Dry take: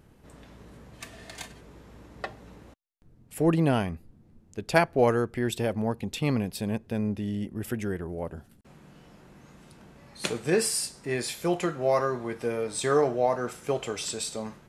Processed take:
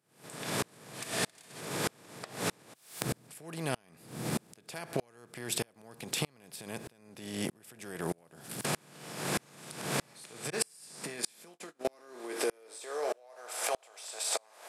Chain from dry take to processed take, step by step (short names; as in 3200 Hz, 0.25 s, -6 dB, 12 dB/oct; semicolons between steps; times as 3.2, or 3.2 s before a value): per-bin compression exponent 0.6; recorder AGC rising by 61 dB/s; tilt +3 dB/oct; 10.5–11.85 gate -20 dBFS, range -40 dB; high-pass sweep 130 Hz -> 660 Hz, 10.63–13.54; compressor, threshold -19 dBFS, peak gain reduction 10 dB; dB-ramp tremolo swelling 1.6 Hz, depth 36 dB; gain -5 dB